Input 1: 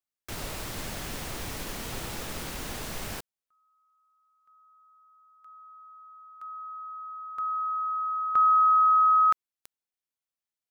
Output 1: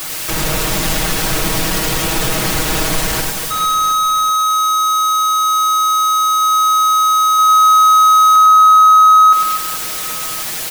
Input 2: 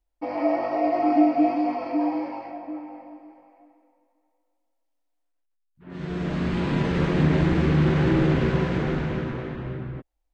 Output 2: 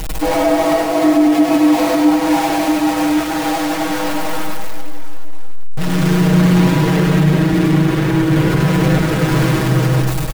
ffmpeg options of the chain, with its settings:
-filter_complex "[0:a]aeval=exprs='val(0)+0.5*0.0668*sgn(val(0))':c=same,aecho=1:1:6.3:0.93,alimiter=limit=-14dB:level=0:latency=1:release=80,asplit=2[a][b];[b]aecho=0:1:100|240|436|710.4|1095:0.631|0.398|0.251|0.158|0.1[c];[a][c]amix=inputs=2:normalize=0,volume=5dB"

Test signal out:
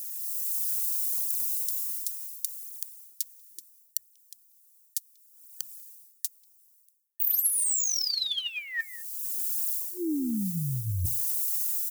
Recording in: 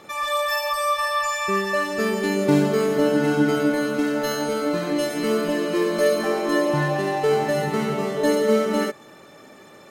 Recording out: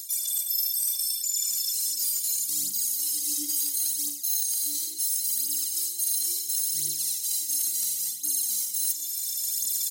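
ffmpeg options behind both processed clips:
-filter_complex "[0:a]highpass=130,asplit=2[a][b];[b]adelay=190,highpass=300,lowpass=3.4k,asoftclip=type=hard:threshold=-13.5dB,volume=-24dB[c];[a][c]amix=inputs=2:normalize=0,aexciter=amount=14.3:drive=3.9:freq=3.8k,asoftclip=type=hard:threshold=-1.5dB,afftfilt=real='re*(1-between(b*sr/4096,360,1800))':imag='im*(1-between(b*sr/4096,360,1800))':win_size=4096:overlap=0.75,crystalizer=i=9:c=0,aphaser=in_gain=1:out_gain=1:delay=3.6:decay=0.65:speed=0.72:type=triangular,dynaudnorm=f=200:g=5:m=12dB,adynamicequalizer=threshold=0.00355:dfrequency=320:dqfactor=6.1:tfrequency=320:tqfactor=6.1:attack=5:release=100:ratio=0.375:range=3.5:mode=boostabove:tftype=bell,bandreject=f=60:t=h:w=6,bandreject=f=120:t=h:w=6,bandreject=f=180:t=h:w=6,areverse,acompressor=threshold=-28dB:ratio=6,areverse,highshelf=f=5.2k:g=5,volume=-1.5dB"

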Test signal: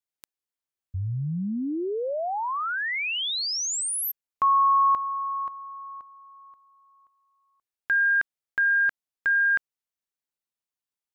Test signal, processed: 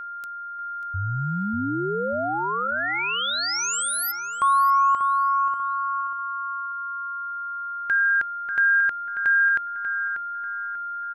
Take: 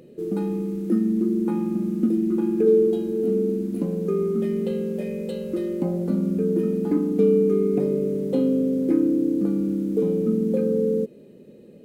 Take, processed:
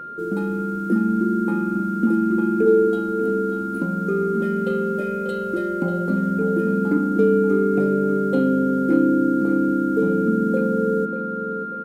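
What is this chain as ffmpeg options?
-filter_complex "[0:a]aeval=exprs='val(0)+0.0224*sin(2*PI*1400*n/s)':c=same,asplit=2[a][b];[b]adelay=590,lowpass=f=3.1k:p=1,volume=-8dB,asplit=2[c][d];[d]adelay=590,lowpass=f=3.1k:p=1,volume=0.4,asplit=2[e][f];[f]adelay=590,lowpass=f=3.1k:p=1,volume=0.4,asplit=2[g][h];[h]adelay=590,lowpass=f=3.1k:p=1,volume=0.4,asplit=2[i][j];[j]adelay=590,lowpass=f=3.1k:p=1,volume=0.4[k];[a][c][e][g][i][k]amix=inputs=6:normalize=0,volume=1dB"

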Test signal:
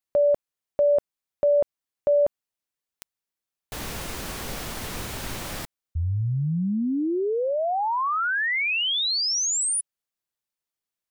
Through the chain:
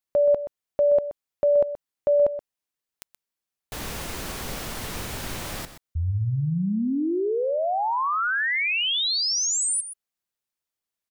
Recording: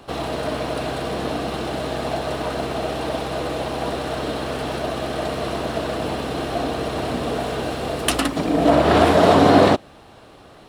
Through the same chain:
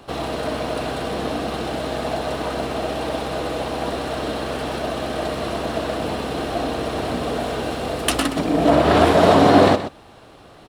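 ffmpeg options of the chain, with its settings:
-af "aecho=1:1:126:0.251"

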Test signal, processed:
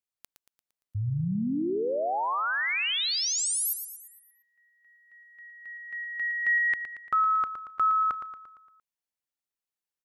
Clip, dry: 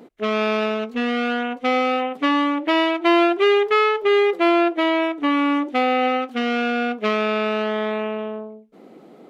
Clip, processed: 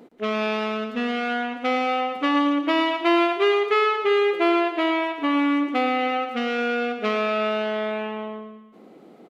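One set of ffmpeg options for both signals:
-af "aecho=1:1:115|230|345|460|575|690:0.355|0.181|0.0923|0.0471|0.024|0.0122,volume=-3dB"

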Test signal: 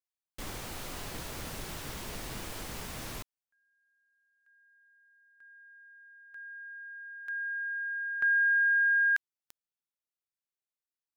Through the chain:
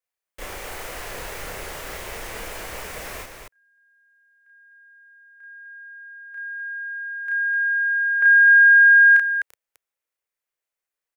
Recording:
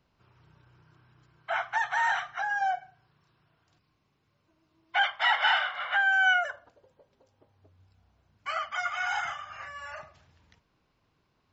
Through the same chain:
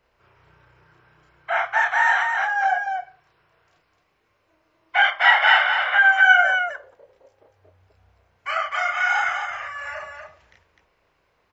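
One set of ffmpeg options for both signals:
-filter_complex "[0:a]equalizer=f=125:t=o:w=1:g=-8,equalizer=f=250:t=o:w=1:g=-8,equalizer=f=500:t=o:w=1:g=7,equalizer=f=2k:t=o:w=1:g=6,equalizer=f=4k:t=o:w=1:g=-4,asplit=2[a][b];[b]aecho=0:1:32.07|253.6:0.891|0.631[c];[a][c]amix=inputs=2:normalize=0,volume=2.5dB"

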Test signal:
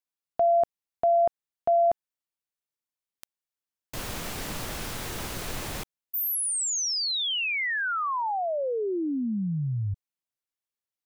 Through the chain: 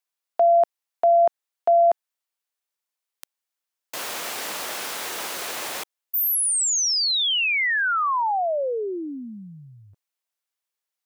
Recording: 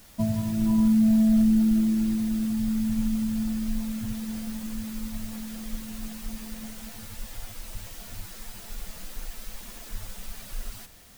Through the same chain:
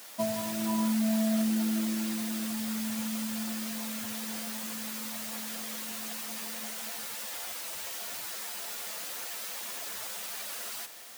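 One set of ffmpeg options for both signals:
-af "highpass=500,volume=6dB"

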